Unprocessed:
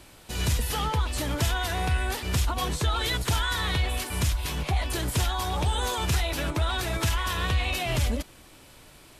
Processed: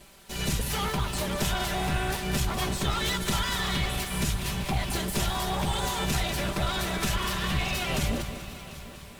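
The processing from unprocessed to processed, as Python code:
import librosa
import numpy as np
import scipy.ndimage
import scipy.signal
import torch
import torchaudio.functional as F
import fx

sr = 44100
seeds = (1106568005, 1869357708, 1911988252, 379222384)

y = fx.lower_of_two(x, sr, delay_ms=5.1)
y = fx.echo_heads(y, sr, ms=248, heads='first and third', feedback_pct=61, wet_db=-18.0)
y = fx.echo_crushed(y, sr, ms=194, feedback_pct=55, bits=8, wet_db=-10)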